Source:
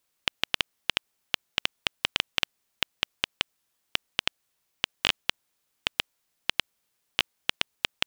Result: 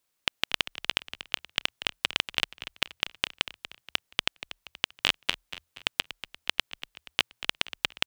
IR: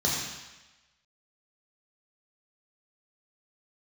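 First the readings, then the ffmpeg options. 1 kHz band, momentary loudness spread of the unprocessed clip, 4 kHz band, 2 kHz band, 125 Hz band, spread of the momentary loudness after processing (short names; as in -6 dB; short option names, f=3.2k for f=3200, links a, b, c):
0.0 dB, 6 LU, 0.0 dB, +0.5 dB, 0.0 dB, 9 LU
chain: -filter_complex "[0:a]aeval=exprs='0.75*(cos(1*acos(clip(val(0)/0.75,-1,1)))-cos(1*PI/2))+0.0188*(cos(7*acos(clip(val(0)/0.75,-1,1)))-cos(7*PI/2))':c=same,asplit=5[a][b][c][d][e];[b]adelay=238,afreqshift=-41,volume=-13dB[f];[c]adelay=476,afreqshift=-82,volume=-20.7dB[g];[d]adelay=714,afreqshift=-123,volume=-28.5dB[h];[e]adelay=952,afreqshift=-164,volume=-36.2dB[i];[a][f][g][h][i]amix=inputs=5:normalize=0"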